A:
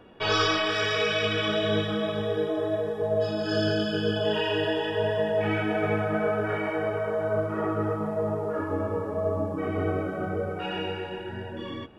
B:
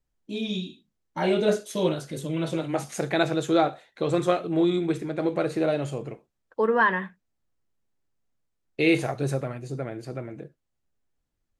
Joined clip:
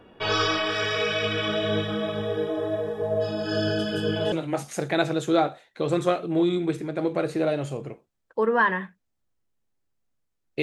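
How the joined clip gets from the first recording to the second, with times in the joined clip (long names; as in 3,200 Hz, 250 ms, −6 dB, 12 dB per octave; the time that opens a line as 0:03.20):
A
0:03.78: mix in B from 0:01.99 0.54 s −8 dB
0:04.32: continue with B from 0:02.53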